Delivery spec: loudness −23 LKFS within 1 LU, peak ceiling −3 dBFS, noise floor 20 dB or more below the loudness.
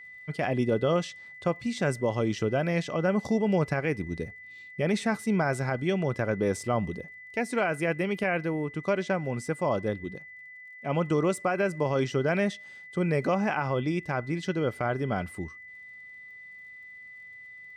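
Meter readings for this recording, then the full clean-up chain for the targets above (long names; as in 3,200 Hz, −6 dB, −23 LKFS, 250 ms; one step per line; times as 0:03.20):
crackle rate 30 per second; interfering tone 2,000 Hz; level of the tone −44 dBFS; integrated loudness −28.5 LKFS; sample peak −16.0 dBFS; target loudness −23.0 LKFS
→ click removal
notch filter 2,000 Hz, Q 30
level +5.5 dB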